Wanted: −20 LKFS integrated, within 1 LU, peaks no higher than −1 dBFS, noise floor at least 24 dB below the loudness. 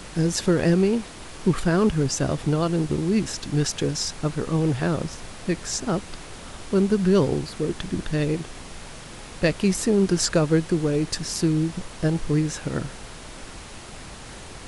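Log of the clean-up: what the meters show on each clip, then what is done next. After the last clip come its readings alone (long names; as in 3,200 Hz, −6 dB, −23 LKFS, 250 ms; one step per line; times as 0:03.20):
background noise floor −40 dBFS; target noise floor −48 dBFS; integrated loudness −24.0 LKFS; sample peak −8.0 dBFS; target loudness −20.0 LKFS
→ noise reduction from a noise print 8 dB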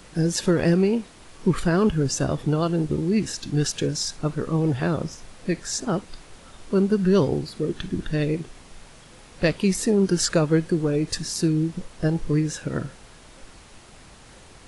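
background noise floor −48 dBFS; integrated loudness −24.0 LKFS; sample peak −8.0 dBFS; target loudness −20.0 LKFS
→ level +4 dB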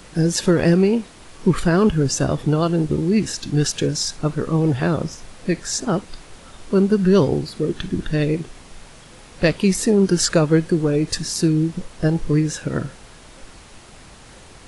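integrated loudness −20.0 LKFS; sample peak −4.0 dBFS; background noise floor −44 dBFS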